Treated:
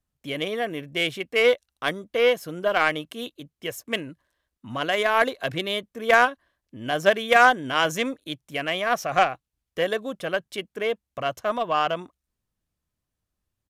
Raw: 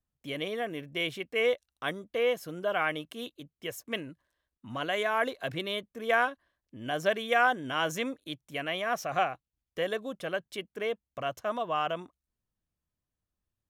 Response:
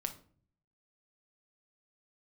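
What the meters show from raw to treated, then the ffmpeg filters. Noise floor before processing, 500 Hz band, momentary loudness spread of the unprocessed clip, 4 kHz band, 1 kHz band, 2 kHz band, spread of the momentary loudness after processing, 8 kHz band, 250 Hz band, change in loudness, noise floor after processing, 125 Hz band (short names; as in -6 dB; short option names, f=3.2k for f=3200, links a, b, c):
under -85 dBFS, +7.0 dB, 13 LU, +7.5 dB, +8.0 dB, +8.0 dB, 16 LU, +7.0 dB, +6.0 dB, +8.0 dB, -84 dBFS, +5.5 dB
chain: -af "aresample=32000,aresample=44100,aeval=exprs='0.266*(cos(1*acos(clip(val(0)/0.266,-1,1)))-cos(1*PI/2))+0.0133*(cos(7*acos(clip(val(0)/0.266,-1,1)))-cos(7*PI/2))':c=same,volume=9dB"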